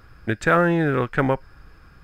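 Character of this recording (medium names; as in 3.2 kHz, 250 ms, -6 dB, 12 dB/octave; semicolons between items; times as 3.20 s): noise floor -50 dBFS; spectral tilt -3.5 dB/octave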